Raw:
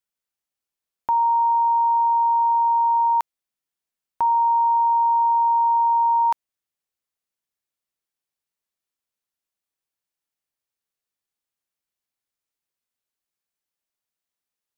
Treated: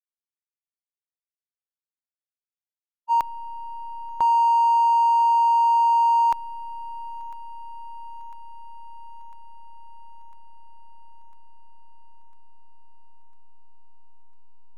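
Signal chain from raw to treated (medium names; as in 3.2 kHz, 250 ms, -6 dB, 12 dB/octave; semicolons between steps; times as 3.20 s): hysteresis with a dead band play -31.5 dBFS; thinning echo 1001 ms, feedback 71%, high-pass 580 Hz, level -19 dB; spectral freeze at 0.64 s, 2.45 s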